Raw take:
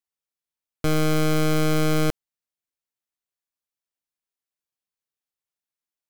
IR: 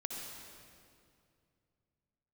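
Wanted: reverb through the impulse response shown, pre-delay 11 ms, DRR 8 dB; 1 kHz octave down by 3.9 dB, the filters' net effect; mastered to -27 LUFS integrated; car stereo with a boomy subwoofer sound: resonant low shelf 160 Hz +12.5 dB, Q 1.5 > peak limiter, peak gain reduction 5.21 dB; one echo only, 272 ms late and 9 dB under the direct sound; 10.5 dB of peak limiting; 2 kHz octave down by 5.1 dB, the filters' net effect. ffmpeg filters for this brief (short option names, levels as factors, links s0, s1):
-filter_complex "[0:a]equalizer=f=1000:t=o:g=-3,equalizer=f=2000:t=o:g=-5.5,alimiter=level_in=1.88:limit=0.0631:level=0:latency=1,volume=0.531,aecho=1:1:272:0.355,asplit=2[s0][s1];[1:a]atrim=start_sample=2205,adelay=11[s2];[s1][s2]afir=irnorm=-1:irlink=0,volume=0.398[s3];[s0][s3]amix=inputs=2:normalize=0,lowshelf=f=160:t=q:w=1.5:g=12.5,volume=2.99,alimiter=limit=0.376:level=0:latency=1"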